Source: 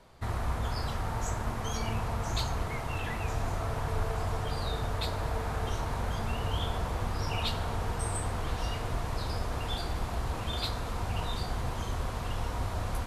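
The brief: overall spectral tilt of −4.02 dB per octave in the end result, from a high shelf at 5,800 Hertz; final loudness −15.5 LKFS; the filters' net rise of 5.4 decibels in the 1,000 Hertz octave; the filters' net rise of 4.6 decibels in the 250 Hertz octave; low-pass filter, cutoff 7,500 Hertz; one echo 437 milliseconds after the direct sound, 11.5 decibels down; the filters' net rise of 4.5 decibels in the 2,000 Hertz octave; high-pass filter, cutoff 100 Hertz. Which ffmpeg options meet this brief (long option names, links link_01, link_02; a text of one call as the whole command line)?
ffmpeg -i in.wav -af "highpass=100,lowpass=7500,equalizer=frequency=250:width_type=o:gain=6,equalizer=frequency=1000:width_type=o:gain=5.5,equalizer=frequency=2000:width_type=o:gain=4.5,highshelf=frequency=5800:gain=-6,aecho=1:1:437:0.266,volume=16.5dB" out.wav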